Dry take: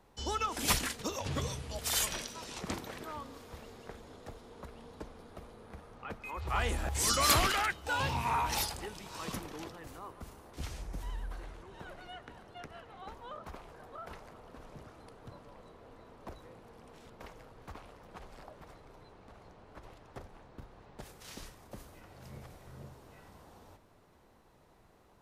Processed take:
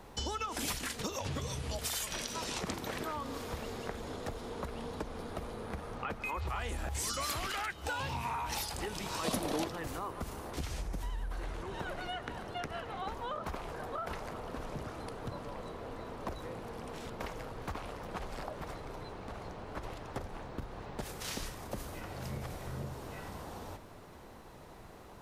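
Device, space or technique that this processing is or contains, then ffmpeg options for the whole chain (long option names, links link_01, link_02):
serial compression, peaks first: -filter_complex "[0:a]acompressor=threshold=-41dB:ratio=5,acompressor=threshold=-49dB:ratio=2,asplit=3[link_01][link_02][link_03];[link_01]afade=type=out:start_time=9.23:duration=0.02[link_04];[link_02]equalizer=frequency=250:width_type=o:width=0.67:gain=7,equalizer=frequency=630:width_type=o:width=0.67:gain=11,equalizer=frequency=4000:width_type=o:width=0.67:gain=6,equalizer=frequency=10000:width_type=o:width=0.67:gain=8,afade=type=in:start_time=9.23:duration=0.02,afade=type=out:start_time=9.63:duration=0.02[link_05];[link_03]afade=type=in:start_time=9.63:duration=0.02[link_06];[link_04][link_05][link_06]amix=inputs=3:normalize=0,volume=11.5dB"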